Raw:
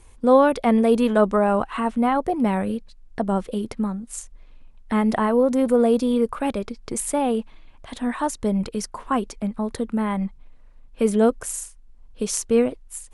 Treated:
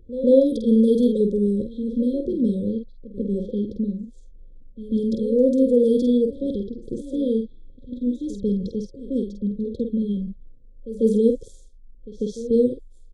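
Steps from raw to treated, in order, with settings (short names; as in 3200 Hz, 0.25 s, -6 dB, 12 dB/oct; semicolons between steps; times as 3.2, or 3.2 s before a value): low-pass opened by the level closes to 1200 Hz, open at -13.5 dBFS; FFT band-reject 560–3200 Hz; de-esser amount 60%; high shelf 4800 Hz -10.5 dB; doubler 49 ms -6 dB; pre-echo 0.144 s -14 dB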